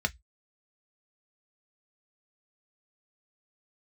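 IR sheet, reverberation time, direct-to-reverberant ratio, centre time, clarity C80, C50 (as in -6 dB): 0.10 s, 6.5 dB, 3 ms, 42.0 dB, 29.0 dB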